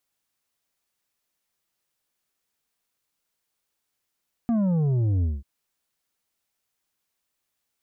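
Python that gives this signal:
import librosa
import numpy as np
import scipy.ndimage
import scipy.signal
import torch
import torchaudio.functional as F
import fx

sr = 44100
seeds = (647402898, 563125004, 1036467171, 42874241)

y = fx.sub_drop(sr, level_db=-20.5, start_hz=240.0, length_s=0.94, drive_db=7.0, fade_s=0.2, end_hz=65.0)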